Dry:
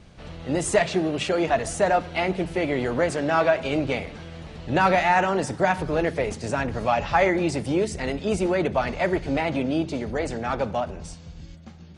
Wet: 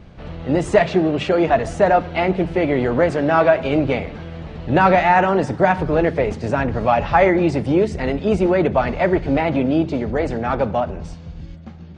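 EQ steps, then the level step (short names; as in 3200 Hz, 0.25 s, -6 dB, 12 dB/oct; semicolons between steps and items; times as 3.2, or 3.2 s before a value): tape spacing loss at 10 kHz 21 dB; +7.5 dB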